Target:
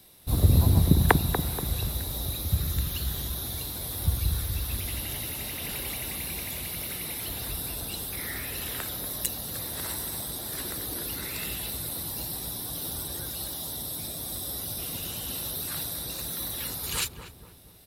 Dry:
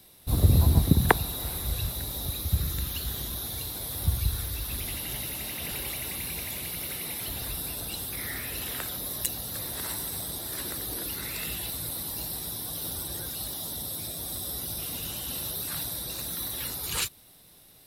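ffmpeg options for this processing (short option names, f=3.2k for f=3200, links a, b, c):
-filter_complex "[0:a]asplit=2[a][b];[b]adelay=239,lowpass=f=840:p=1,volume=-6dB,asplit=2[c][d];[d]adelay=239,lowpass=f=840:p=1,volume=0.54,asplit=2[e][f];[f]adelay=239,lowpass=f=840:p=1,volume=0.54,asplit=2[g][h];[h]adelay=239,lowpass=f=840:p=1,volume=0.54,asplit=2[i][j];[j]adelay=239,lowpass=f=840:p=1,volume=0.54,asplit=2[k][l];[l]adelay=239,lowpass=f=840:p=1,volume=0.54,asplit=2[m][n];[n]adelay=239,lowpass=f=840:p=1,volume=0.54[o];[a][c][e][g][i][k][m][o]amix=inputs=8:normalize=0"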